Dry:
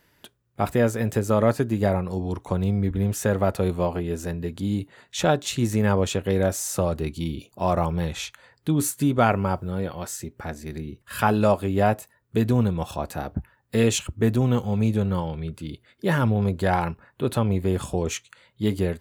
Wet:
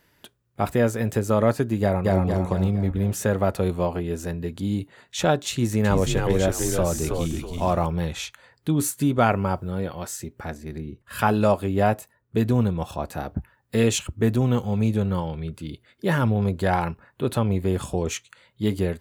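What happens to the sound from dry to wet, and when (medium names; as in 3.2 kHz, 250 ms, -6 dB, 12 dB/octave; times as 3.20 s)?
1.81–2.22 s: echo throw 230 ms, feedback 50%, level -0.5 dB
5.52–7.87 s: frequency-shifting echo 324 ms, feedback 32%, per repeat -76 Hz, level -4 dB
10.57–13.13 s: tape noise reduction on one side only decoder only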